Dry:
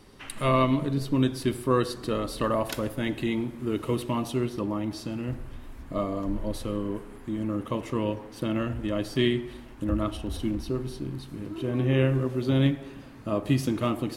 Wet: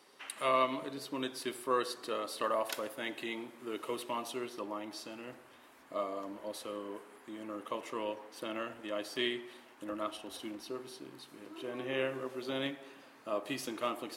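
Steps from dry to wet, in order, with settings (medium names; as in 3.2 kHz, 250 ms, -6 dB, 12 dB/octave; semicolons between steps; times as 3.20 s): high-pass 510 Hz 12 dB/octave; trim -4 dB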